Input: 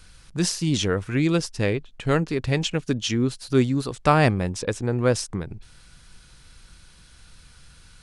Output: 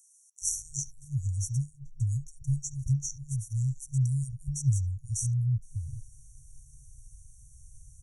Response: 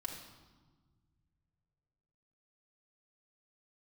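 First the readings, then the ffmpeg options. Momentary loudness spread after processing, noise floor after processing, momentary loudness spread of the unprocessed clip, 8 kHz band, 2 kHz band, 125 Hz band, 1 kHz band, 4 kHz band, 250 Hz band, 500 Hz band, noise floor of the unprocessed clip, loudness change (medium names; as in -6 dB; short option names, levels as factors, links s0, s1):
8 LU, -59 dBFS, 7 LU, -0.5 dB, under -40 dB, -2.0 dB, under -40 dB, under -15 dB, under -15 dB, under -40 dB, -51 dBFS, -8.0 dB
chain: -filter_complex "[0:a]afftfilt=real='re*(1-between(b*sr/4096,150,5600))':imag='im*(1-between(b*sr/4096,150,5600))':win_size=4096:overlap=0.75,acrossover=split=920|3500[s0][s1][s2];[s1]adelay=70[s3];[s0]adelay=420[s4];[s4][s3][s2]amix=inputs=3:normalize=0"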